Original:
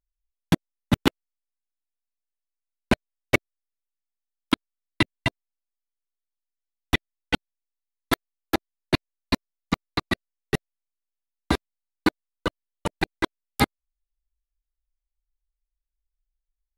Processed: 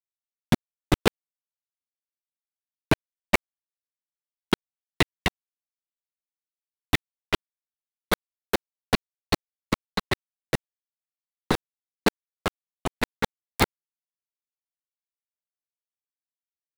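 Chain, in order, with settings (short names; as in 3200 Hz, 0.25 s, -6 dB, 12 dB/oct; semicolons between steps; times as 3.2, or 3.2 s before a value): cycle switcher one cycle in 3, inverted; crossover distortion -35.5 dBFS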